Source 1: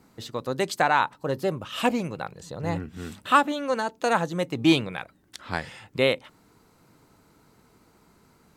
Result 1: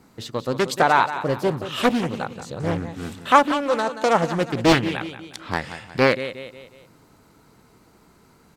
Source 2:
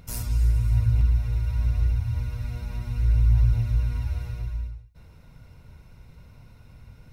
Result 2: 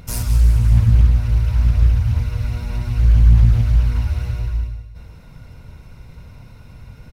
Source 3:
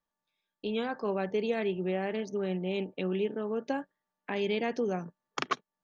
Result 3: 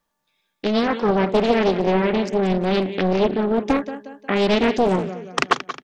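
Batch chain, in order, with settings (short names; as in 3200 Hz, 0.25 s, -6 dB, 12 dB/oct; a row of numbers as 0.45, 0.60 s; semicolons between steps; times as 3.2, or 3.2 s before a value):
feedback echo 0.18 s, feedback 44%, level -12 dB; Doppler distortion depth 0.74 ms; normalise peaks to -2 dBFS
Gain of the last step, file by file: +4.0, +8.5, +12.5 dB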